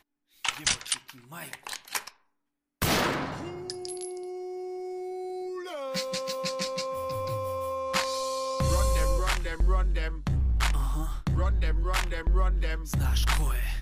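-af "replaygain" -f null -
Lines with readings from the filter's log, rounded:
track_gain = +11.2 dB
track_peak = 0.180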